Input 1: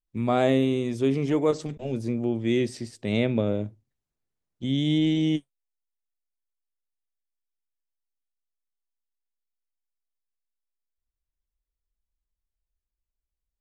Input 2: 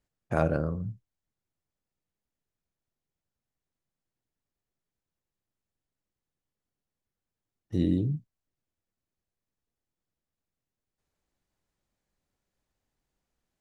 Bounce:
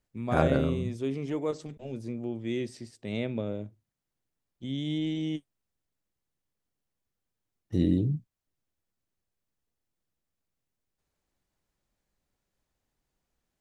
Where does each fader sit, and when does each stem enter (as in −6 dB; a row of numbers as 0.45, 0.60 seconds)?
−8.0, +1.0 decibels; 0.00, 0.00 seconds